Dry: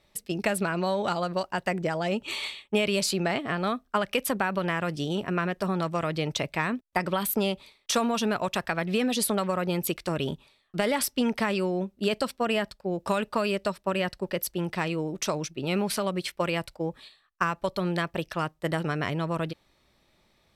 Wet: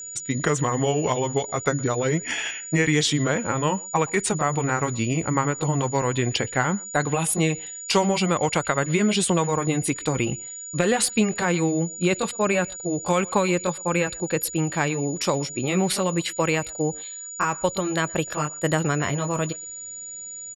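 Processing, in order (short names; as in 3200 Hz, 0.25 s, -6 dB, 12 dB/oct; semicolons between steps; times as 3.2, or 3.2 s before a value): gliding pitch shift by -5.5 st ending unshifted; speakerphone echo 0.12 s, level -23 dB; whine 6900 Hz -40 dBFS; gain +6 dB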